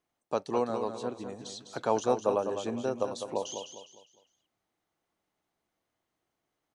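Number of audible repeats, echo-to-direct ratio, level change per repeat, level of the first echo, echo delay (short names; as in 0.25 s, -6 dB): 4, -7.5 dB, -9.0 dB, -8.0 dB, 0.203 s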